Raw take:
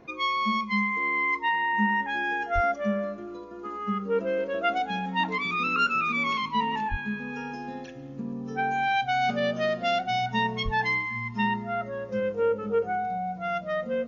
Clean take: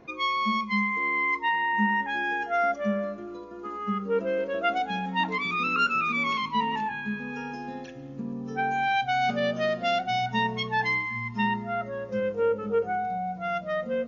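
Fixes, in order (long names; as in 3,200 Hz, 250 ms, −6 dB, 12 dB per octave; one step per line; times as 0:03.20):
high-pass at the plosives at 0:02.54/0:06.90/0:10.64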